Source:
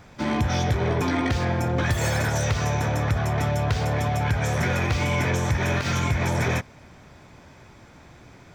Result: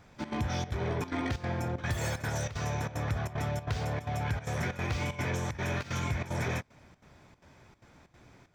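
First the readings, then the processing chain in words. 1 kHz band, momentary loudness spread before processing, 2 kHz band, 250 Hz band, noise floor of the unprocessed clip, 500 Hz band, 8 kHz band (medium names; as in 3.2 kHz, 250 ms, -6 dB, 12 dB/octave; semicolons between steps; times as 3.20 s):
-9.5 dB, 1 LU, -9.5 dB, -9.5 dB, -49 dBFS, -9.5 dB, -9.0 dB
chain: trance gate "xxx.xxxx.xxxx." 188 bpm -12 dB; trim -8.5 dB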